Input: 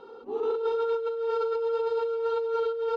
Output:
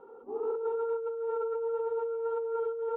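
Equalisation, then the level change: low-pass 1.2 kHz 12 dB/octave; distance through air 390 m; bass shelf 420 Hz -7 dB; 0.0 dB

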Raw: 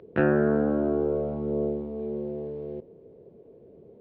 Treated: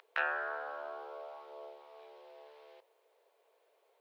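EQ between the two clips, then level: dynamic bell 1.7 kHz, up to -6 dB, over -44 dBFS, Q 0.86; inverse Chebyshev high-pass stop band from 200 Hz, stop band 70 dB; treble shelf 2.3 kHz +8.5 dB; +2.0 dB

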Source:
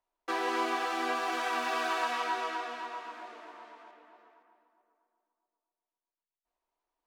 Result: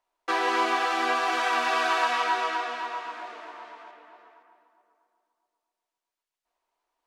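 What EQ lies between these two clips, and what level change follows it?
bass shelf 330 Hz -10 dB; treble shelf 11 kHz -12 dB; +8.0 dB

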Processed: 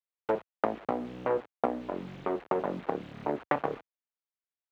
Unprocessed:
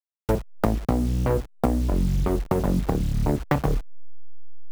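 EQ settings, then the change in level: high-pass 460 Hz 12 dB/octave; distance through air 230 m; peaking EQ 5.2 kHz -10.5 dB 0.88 oct; 0.0 dB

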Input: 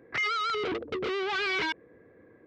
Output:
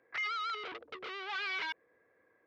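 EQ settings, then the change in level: three-band isolator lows -17 dB, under 600 Hz, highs -13 dB, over 6.1 kHz; -6.5 dB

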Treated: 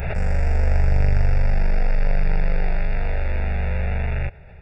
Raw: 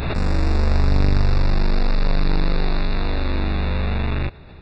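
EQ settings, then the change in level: static phaser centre 1.1 kHz, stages 6; 0.0 dB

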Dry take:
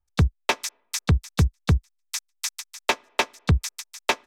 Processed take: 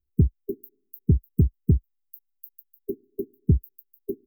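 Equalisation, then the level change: brick-wall FIR band-stop 430–14000 Hz; bass shelf 170 Hz -7.5 dB; +5.5 dB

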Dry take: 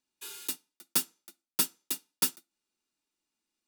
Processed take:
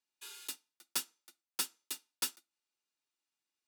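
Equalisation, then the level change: frequency weighting A; -5.0 dB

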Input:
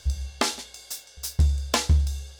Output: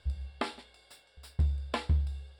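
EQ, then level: boxcar filter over 7 samples; -7.5 dB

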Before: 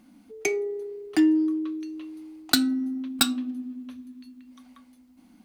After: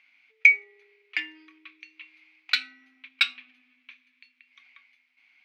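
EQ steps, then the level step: resonant high-pass 2.3 kHz, resonance Q 8.3; distance through air 250 m; +2.5 dB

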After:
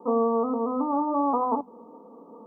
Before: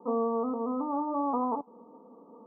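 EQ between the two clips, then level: hum notches 50/100/150/200/250 Hz; +5.5 dB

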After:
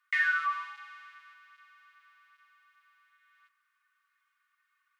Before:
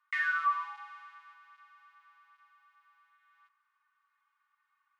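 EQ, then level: high-pass 1.4 kHz 24 dB/octave; +5.0 dB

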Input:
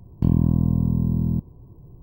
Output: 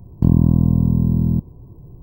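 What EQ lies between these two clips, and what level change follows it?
peaking EQ 2.9 kHz -9.5 dB 1.5 oct; +5.0 dB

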